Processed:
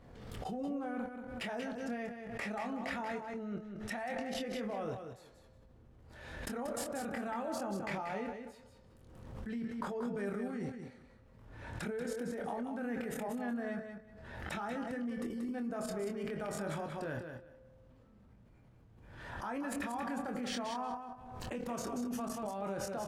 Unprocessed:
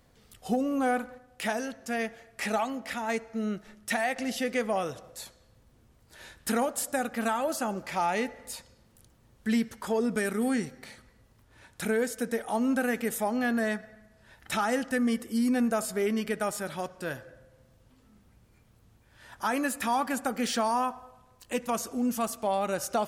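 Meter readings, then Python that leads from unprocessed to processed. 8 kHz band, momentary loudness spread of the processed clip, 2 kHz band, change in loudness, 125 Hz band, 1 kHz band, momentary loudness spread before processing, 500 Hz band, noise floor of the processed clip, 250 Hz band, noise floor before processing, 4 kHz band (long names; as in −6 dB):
−12.5 dB, 11 LU, −10.5 dB, −10.0 dB, −3.0 dB, −10.5 dB, 10 LU, −9.0 dB, −61 dBFS, −9.0 dB, −62 dBFS, −9.5 dB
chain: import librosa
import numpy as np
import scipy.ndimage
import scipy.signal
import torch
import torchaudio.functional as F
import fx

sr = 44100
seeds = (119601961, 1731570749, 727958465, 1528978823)

y = fx.lowpass(x, sr, hz=1200.0, slope=6)
y = fx.level_steps(y, sr, step_db=23)
y = fx.doubler(y, sr, ms=25.0, db=-6.0)
y = fx.echo_feedback(y, sr, ms=184, feedback_pct=18, wet_db=-7)
y = fx.pre_swell(y, sr, db_per_s=41.0)
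y = y * librosa.db_to_amplitude(6.0)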